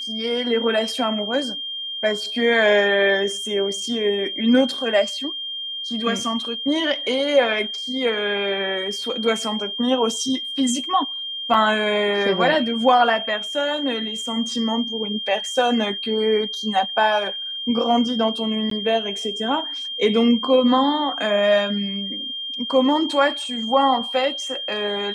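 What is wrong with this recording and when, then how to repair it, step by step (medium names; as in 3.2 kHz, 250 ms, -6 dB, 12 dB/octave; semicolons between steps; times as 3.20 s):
whine 3.2 kHz -27 dBFS
11.54 s: dropout 2.1 ms
18.70–18.71 s: dropout 13 ms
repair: band-stop 3.2 kHz, Q 30; interpolate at 11.54 s, 2.1 ms; interpolate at 18.70 s, 13 ms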